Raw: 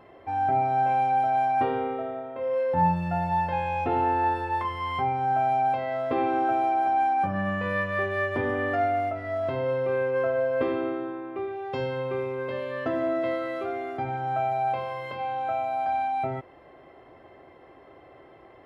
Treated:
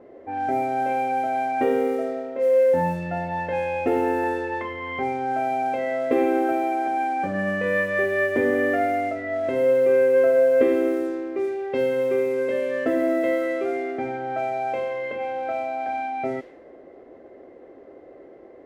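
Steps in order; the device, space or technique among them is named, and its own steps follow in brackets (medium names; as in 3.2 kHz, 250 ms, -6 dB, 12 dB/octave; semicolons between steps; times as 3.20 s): graphic EQ 125/250/500/1000/2000 Hz -7/+10/+12/-7/+11 dB; cassette deck with a dynamic noise filter (white noise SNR 31 dB; level-controlled noise filter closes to 910 Hz, open at -15.5 dBFS); trim -3.5 dB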